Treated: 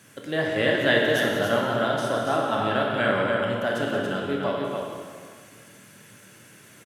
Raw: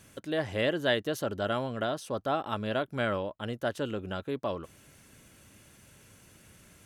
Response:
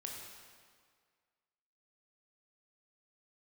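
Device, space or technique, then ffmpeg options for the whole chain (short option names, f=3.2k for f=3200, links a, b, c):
stadium PA: -filter_complex "[0:a]highpass=f=120:w=0.5412,highpass=f=120:w=1.3066,equalizer=f=1.7k:t=o:w=0.61:g=4,aecho=1:1:174.9|282.8:0.282|0.562[a];[1:a]atrim=start_sample=2205[b];[a][b]afir=irnorm=-1:irlink=0,volume=7.5dB"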